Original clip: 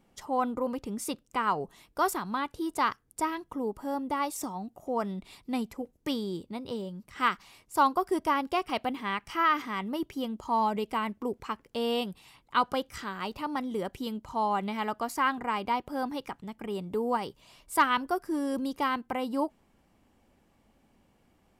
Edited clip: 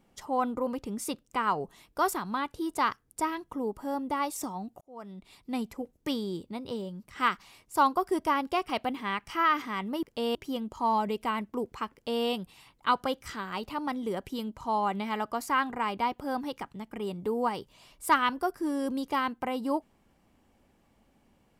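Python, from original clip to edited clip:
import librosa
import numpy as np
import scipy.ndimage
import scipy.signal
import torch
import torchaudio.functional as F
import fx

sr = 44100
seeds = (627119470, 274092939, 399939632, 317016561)

y = fx.edit(x, sr, fx.fade_in_span(start_s=4.81, length_s=0.87),
    fx.duplicate(start_s=11.61, length_s=0.32, to_s=10.03), tone=tone)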